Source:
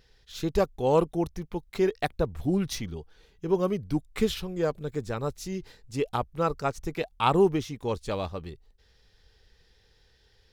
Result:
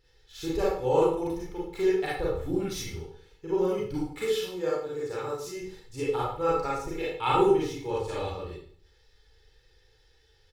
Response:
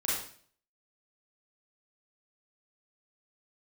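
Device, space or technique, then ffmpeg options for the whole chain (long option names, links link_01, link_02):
microphone above a desk: -filter_complex "[0:a]asettb=1/sr,asplit=3[link_01][link_02][link_03];[link_01]atrim=end=4.034[link_04];[link_02]atrim=start=4.03:end=5.57,asetpts=PTS-STARTPTS,afade=type=in:duration=0.004:curve=qsin,afade=type=out:start_time=1.536:duration=0.004:curve=qsin,highpass=frequency=240:poles=1[link_05];[link_03]atrim=start=5.566[link_06];[link_04][link_05]acrossfade=duration=0.004:curve1=hsin:curve2=qsin[link_07];[link_07][link_06]acrossfade=duration=0.004:curve1=qsin:curve2=hsin,aecho=1:1:2.3:0.64[link_08];[1:a]atrim=start_sample=2205[link_09];[link_08][link_09]afir=irnorm=-1:irlink=0,volume=-8.5dB"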